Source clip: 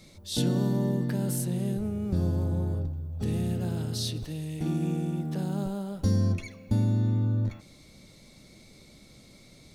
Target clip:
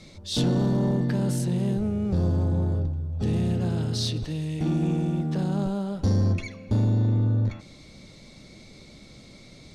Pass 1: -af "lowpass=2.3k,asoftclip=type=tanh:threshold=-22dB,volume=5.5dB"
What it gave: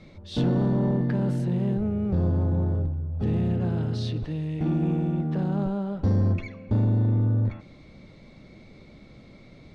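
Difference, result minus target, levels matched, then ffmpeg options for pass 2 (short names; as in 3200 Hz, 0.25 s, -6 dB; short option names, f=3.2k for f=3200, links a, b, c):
8000 Hz band -16.0 dB
-af "lowpass=6.6k,asoftclip=type=tanh:threshold=-22dB,volume=5.5dB"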